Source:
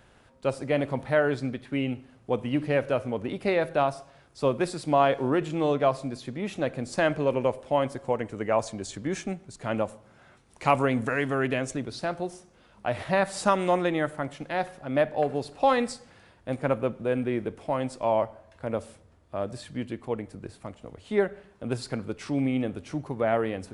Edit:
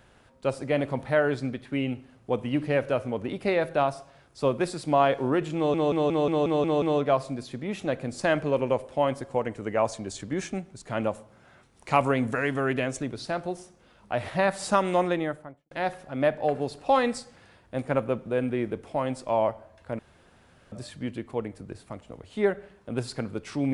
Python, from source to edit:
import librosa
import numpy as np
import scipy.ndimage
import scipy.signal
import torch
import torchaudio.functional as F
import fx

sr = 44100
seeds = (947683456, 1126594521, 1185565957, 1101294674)

y = fx.studio_fade_out(x, sr, start_s=13.79, length_s=0.66)
y = fx.edit(y, sr, fx.stutter(start_s=5.56, slice_s=0.18, count=8),
    fx.room_tone_fill(start_s=18.73, length_s=0.73), tone=tone)